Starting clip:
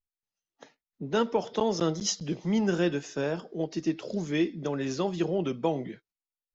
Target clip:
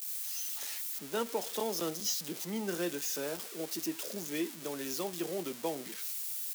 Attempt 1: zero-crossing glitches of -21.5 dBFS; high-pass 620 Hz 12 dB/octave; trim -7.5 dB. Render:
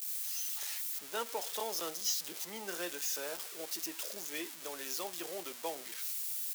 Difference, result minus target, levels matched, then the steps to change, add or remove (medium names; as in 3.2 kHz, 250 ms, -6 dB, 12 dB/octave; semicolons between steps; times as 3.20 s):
250 Hz band -9.5 dB
change: high-pass 240 Hz 12 dB/octave